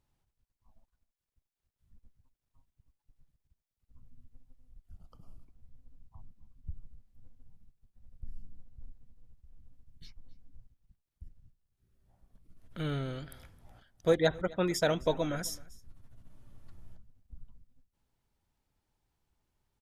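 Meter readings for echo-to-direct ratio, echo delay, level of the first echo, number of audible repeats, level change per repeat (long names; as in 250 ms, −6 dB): −22.5 dB, 263 ms, −22.5 dB, 1, repeats not evenly spaced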